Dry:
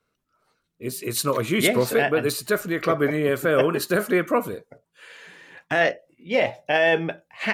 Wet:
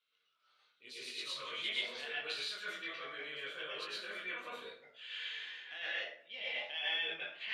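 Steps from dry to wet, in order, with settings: chorus 1.3 Hz, delay 19 ms, depth 2.5 ms; reverse; compression 6:1, threshold -36 dBFS, peak gain reduction 17.5 dB; reverse; band-pass filter 3.3 kHz, Q 5.1; distance through air 55 m; plate-style reverb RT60 0.59 s, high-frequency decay 0.6×, pre-delay 95 ms, DRR -7 dB; trim +10.5 dB

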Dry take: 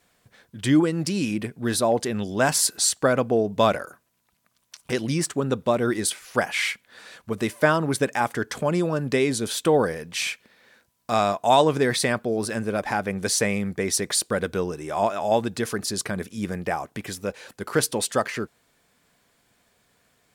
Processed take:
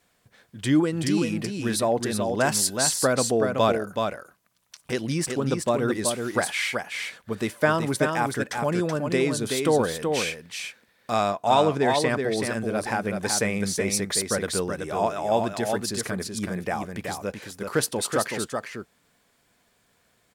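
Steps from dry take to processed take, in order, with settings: 11.30–12.10 s: treble shelf 7.1 kHz -9 dB; delay 377 ms -5 dB; trim -2 dB

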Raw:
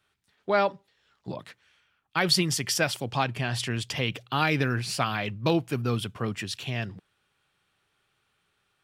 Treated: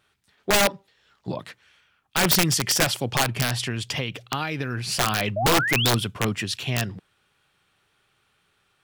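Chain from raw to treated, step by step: 3.50–4.92 s: compression 10:1, threshold -29 dBFS, peak gain reduction 10.5 dB; 5.36–5.91 s: painted sound rise 580–4300 Hz -30 dBFS; wow and flutter 17 cents; integer overflow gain 17.5 dB; trim +5.5 dB

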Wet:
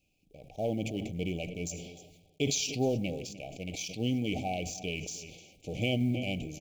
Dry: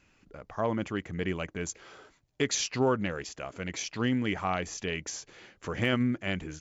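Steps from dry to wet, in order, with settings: companding laws mixed up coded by A; Chebyshev band-stop 780–2300 Hz, order 5; peaking EQ 410 Hz -2 dB; echo from a far wall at 52 m, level -19 dB; simulated room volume 2900 m³, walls furnished, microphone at 0.45 m; decay stretcher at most 47 dB/s

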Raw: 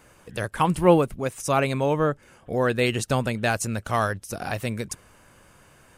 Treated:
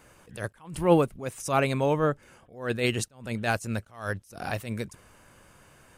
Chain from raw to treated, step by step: attacks held to a fixed rise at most 140 dB/s; trim -1.5 dB

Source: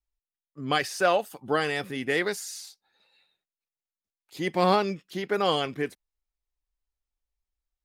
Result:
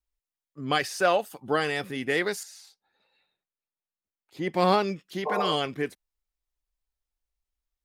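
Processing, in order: 2.43–4.54 s: treble shelf 3 kHz -11 dB; 5.29–5.50 s: spectral replace 390–1100 Hz after

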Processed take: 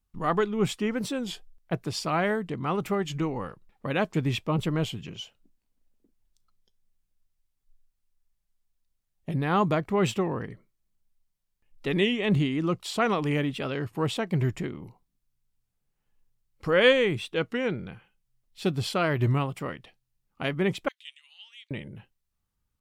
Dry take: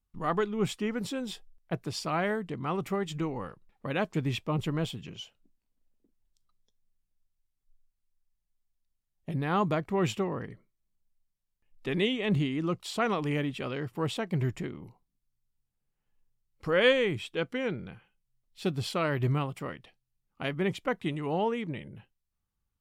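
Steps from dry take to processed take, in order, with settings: 20.89–21.71 s: ladder high-pass 2.8 kHz, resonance 50%; warped record 33 1/3 rpm, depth 100 cents; trim +3.5 dB

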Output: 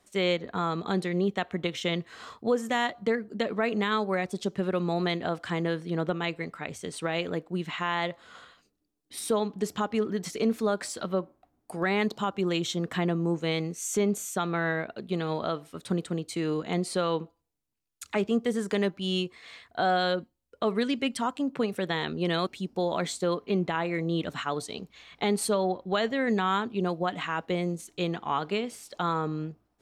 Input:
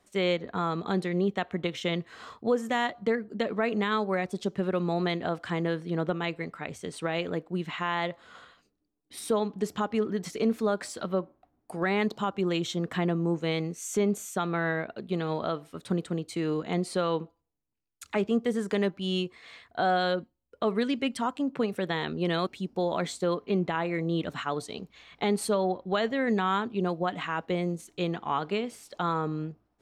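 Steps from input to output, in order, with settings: peaking EQ 9.7 kHz +4 dB 2.7 oct

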